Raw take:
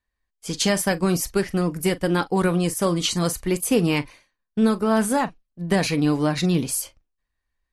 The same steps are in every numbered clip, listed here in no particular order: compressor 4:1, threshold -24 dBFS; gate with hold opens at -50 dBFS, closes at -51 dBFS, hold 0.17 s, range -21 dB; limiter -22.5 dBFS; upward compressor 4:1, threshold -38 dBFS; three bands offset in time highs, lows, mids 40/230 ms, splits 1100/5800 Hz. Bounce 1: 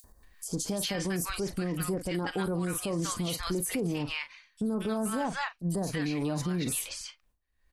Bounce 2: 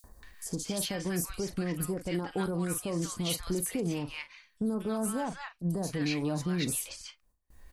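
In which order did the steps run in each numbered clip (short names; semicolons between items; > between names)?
three bands offset in time > gate with hold > upward compressor > limiter > compressor; upward compressor > compressor > limiter > three bands offset in time > gate with hold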